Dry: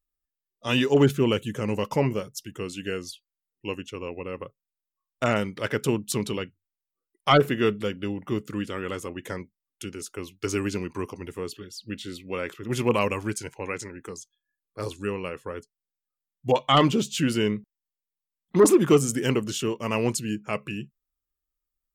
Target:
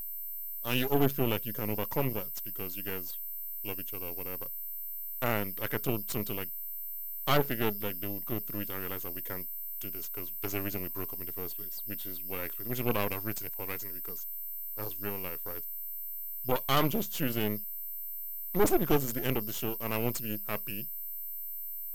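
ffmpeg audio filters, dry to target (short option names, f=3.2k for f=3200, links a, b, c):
-af "aeval=exprs='val(0)+0.0398*sin(2*PI*13000*n/s)':c=same,aeval=exprs='max(val(0),0)':c=same,volume=-4.5dB"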